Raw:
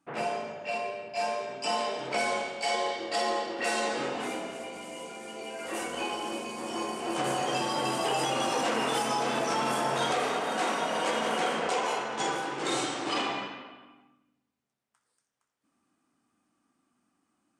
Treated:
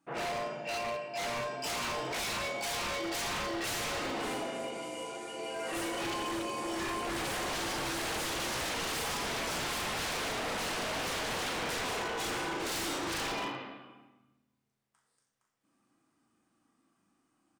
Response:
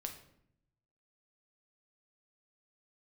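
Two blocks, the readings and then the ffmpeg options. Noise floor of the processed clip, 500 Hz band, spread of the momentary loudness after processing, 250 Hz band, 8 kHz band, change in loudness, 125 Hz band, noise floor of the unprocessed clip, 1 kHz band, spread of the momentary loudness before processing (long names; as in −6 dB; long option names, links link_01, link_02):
−78 dBFS, −6.0 dB, 4 LU, −3.5 dB, 0.0 dB, −4.0 dB, −0.5 dB, −81 dBFS, −6.5 dB, 8 LU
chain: -filter_complex "[0:a]asplit=2[link_01][link_02];[link_02]adelay=39,volume=-5.5dB[link_03];[link_01][link_03]amix=inputs=2:normalize=0[link_04];[1:a]atrim=start_sample=2205[link_05];[link_04][link_05]afir=irnorm=-1:irlink=0,aeval=exprs='0.0266*(abs(mod(val(0)/0.0266+3,4)-2)-1)':channel_layout=same,volume=1.5dB"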